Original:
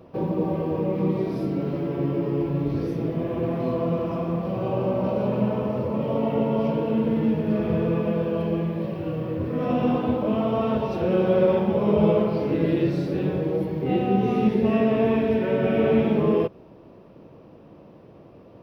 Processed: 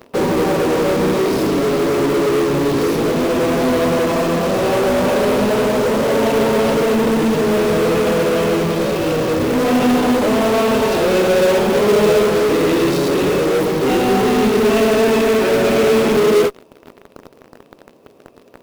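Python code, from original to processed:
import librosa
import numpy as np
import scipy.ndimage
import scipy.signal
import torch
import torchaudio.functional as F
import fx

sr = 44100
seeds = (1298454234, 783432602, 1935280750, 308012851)

p1 = fx.bass_treble(x, sr, bass_db=-11, treble_db=9)
p2 = fx.small_body(p1, sr, hz=(250.0, 410.0, 2600.0, 3700.0), ring_ms=95, db=9)
p3 = fx.fuzz(p2, sr, gain_db=40.0, gate_db=-41.0)
p4 = p2 + F.gain(torch.from_numpy(p3), -4.0).numpy()
y = fx.quant_float(p4, sr, bits=2)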